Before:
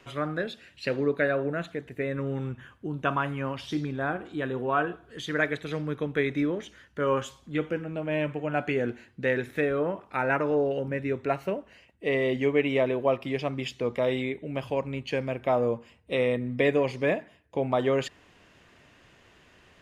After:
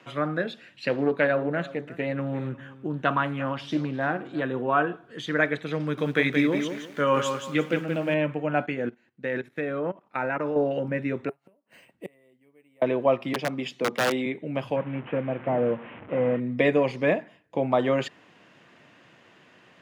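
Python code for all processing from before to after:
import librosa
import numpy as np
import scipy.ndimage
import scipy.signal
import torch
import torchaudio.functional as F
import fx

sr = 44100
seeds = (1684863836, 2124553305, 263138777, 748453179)

y = fx.chain(x, sr, fx.echo_single(ms=347, db=-18.0),
    fx.doppler_dist(depth_ms=0.17), at=(0.89, 4.43))
y = fx.chain(y, sr, fx.high_shelf(hz=2600.0, db=11.0),
    fx.echo_crushed(ms=175, feedback_pct=35, bits=8, wet_db=-6.0), at=(5.8, 8.14))
y = fx.chain(y, sr, fx.level_steps(step_db=15),
    fx.upward_expand(threshold_db=-45.0, expansion=1.5), at=(8.66, 10.56))
y = fx.chain(y, sr, fx.gate_flip(shuts_db=-28.0, range_db=-37),
    fx.resample_bad(factor=4, down='none', up='hold'), at=(11.29, 12.82))
y = fx.chain(y, sr, fx.highpass(hz=150.0, slope=24),
    fx.peak_eq(hz=2000.0, db=-2.5, octaves=1.5),
    fx.overflow_wrap(gain_db=19.5), at=(13.33, 14.26))
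y = fx.chain(y, sr, fx.delta_mod(bps=16000, step_db=-37.0),
    fx.air_absorb(metres=250.0), at=(14.76, 16.4))
y = scipy.signal.sosfilt(scipy.signal.butter(4, 130.0, 'highpass', fs=sr, output='sos'), y)
y = fx.high_shelf(y, sr, hz=5600.0, db=-10.5)
y = fx.notch(y, sr, hz=410.0, q=12.0)
y = y * librosa.db_to_amplitude(3.5)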